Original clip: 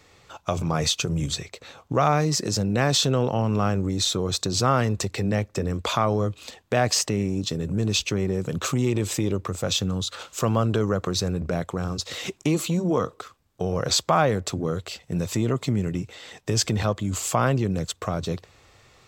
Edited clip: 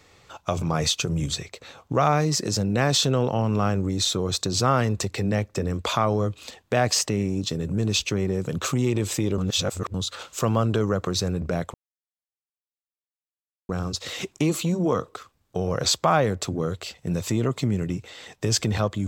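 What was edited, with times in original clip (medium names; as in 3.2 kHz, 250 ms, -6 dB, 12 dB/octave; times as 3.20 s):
9.38–9.94 s: reverse
11.74 s: insert silence 1.95 s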